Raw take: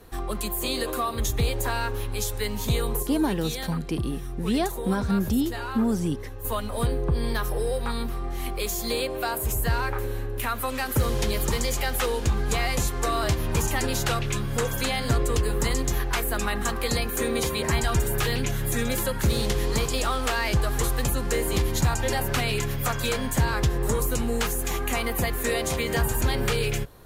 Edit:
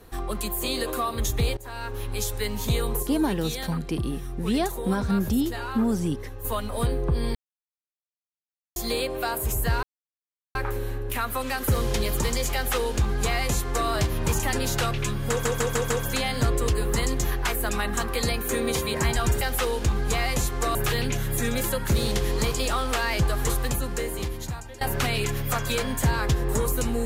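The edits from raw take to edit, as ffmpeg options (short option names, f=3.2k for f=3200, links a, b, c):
-filter_complex "[0:a]asplit=12[a][b][c][d][e][f][g][h][i][j][k][l];[a]atrim=end=1.57,asetpts=PTS-STARTPTS,afade=t=out:st=1.566:d=0.004:c=hsin:silence=0.0841395[m];[b]atrim=start=1.57:end=7.35,asetpts=PTS-STARTPTS,afade=t=in:d=0.57:silence=0.0841395,afade=t=out:st=5.776:d=0.004:c=hsin[n];[c]atrim=start=7.35:end=8.76,asetpts=PTS-STARTPTS,volume=0[o];[d]atrim=start=8.76:end=9.83,asetpts=PTS-STARTPTS,afade=t=in:d=0.004:c=hsin,afade=t=out:st=1.066:d=0.004:c=hsin,apad=pad_dur=0.72[p];[e]atrim=start=9.83:end=14.732,asetpts=PTS-STARTPTS,afade=t=in:d=0.004:c=hsin[q];[f]atrim=start=14.578:end=14.732[r];[g]atrim=start=14.578:end=14.732[s];[h]atrim=start=14.578:end=14.732[t];[i]atrim=start=14.578:end=18.092[u];[j]atrim=start=11.818:end=13.162[v];[k]atrim=start=18.088:end=22.15,asetpts=PTS-STARTPTS,afade=t=out:st=2.762:d=1.3:silence=0.0944061[w];[l]atrim=start=22.15,asetpts=PTS-STARTPTS,afade=t=in:d=0.004:c=hsin:silence=0.0944061[x];[m][n][o][p][q]concat=n=5:v=0:a=1[y];[y][r]acrossfade=d=0.004:c1=hsin:c2=hsin[z];[z][s]acrossfade=d=0.004:c1=hsin:c2=hsin[aa];[aa][t]acrossfade=d=0.004:c1=hsin:c2=hsin[ab];[ab][u]acrossfade=d=0.004:c1=hsin:c2=hsin[ac];[ac][v]acrossfade=d=0.004:c1=hsin:c2=hsin[ad];[w][x]concat=n=2:v=0:a=1[ae];[ad][ae]acrossfade=d=0.004:c1=hsin:c2=hsin"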